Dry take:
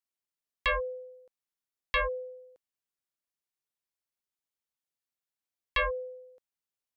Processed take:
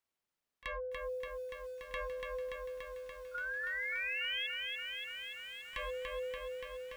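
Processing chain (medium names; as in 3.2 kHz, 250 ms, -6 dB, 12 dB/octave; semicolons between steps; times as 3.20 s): treble shelf 3.8 kHz -9.5 dB; hum notches 60/120/180/240/300/360 Hz; peak limiter -30.5 dBFS, peak gain reduction 9 dB; compression 5:1, threshold -48 dBFS, peak gain reduction 13 dB; saturation -37.5 dBFS, distortion -23 dB; painted sound rise, 3.34–4.47 s, 1.4–3.4 kHz -47 dBFS; pre-echo 30 ms -19 dB; bit-crushed delay 288 ms, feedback 80%, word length 12-bit, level -3.5 dB; trim +7.5 dB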